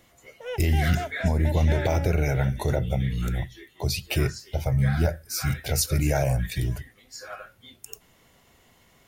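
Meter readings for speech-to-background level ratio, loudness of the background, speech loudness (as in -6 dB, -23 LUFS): 11.0 dB, -36.5 LUFS, -25.5 LUFS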